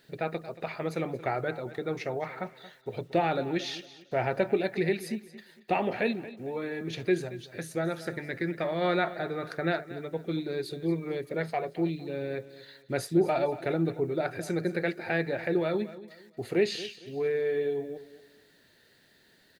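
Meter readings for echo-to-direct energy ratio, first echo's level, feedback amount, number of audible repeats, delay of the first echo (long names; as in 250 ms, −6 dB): −15.5 dB, −16.0 dB, 32%, 2, 228 ms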